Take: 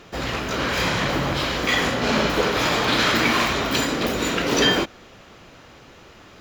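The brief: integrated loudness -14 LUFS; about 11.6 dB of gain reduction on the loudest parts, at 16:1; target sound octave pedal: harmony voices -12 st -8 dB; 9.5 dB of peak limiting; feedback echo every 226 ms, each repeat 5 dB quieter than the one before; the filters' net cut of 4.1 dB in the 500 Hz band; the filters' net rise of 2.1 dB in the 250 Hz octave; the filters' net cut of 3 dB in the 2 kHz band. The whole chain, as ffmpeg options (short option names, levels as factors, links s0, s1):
-filter_complex "[0:a]equalizer=f=250:t=o:g=4.5,equalizer=f=500:t=o:g=-6.5,equalizer=f=2000:t=o:g=-3.5,acompressor=threshold=0.0447:ratio=16,alimiter=level_in=1.41:limit=0.0631:level=0:latency=1,volume=0.708,aecho=1:1:226|452|678|904|1130|1356|1582:0.562|0.315|0.176|0.0988|0.0553|0.031|0.0173,asplit=2[s0][s1];[s1]asetrate=22050,aresample=44100,atempo=2,volume=0.398[s2];[s0][s2]amix=inputs=2:normalize=0,volume=10"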